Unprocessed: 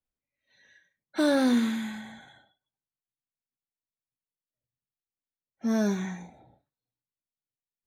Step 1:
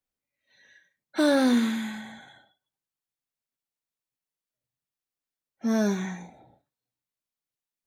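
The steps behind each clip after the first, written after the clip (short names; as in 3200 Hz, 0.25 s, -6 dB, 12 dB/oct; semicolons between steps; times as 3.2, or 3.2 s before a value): low shelf 100 Hz -7.5 dB; gain +2.5 dB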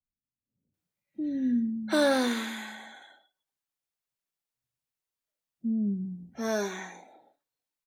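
bands offset in time lows, highs 0.74 s, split 270 Hz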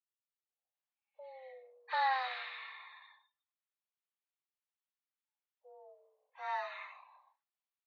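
mistuned SSB +260 Hz 450–3600 Hz; gain -6 dB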